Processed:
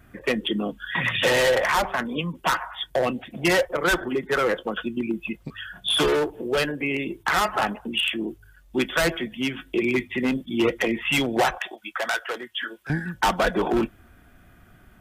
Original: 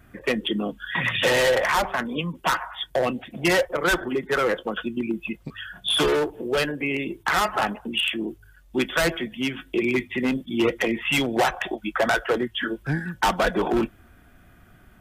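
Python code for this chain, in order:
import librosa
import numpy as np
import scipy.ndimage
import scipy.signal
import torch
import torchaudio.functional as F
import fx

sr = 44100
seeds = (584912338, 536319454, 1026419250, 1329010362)

y = fx.highpass(x, sr, hz=1400.0, slope=6, at=(11.58, 12.9))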